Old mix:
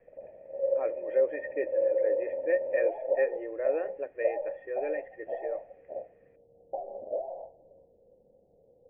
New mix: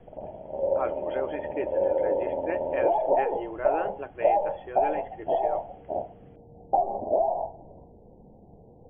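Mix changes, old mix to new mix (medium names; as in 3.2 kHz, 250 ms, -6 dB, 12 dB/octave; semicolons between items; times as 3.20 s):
speech -10.0 dB; master: remove cascade formant filter e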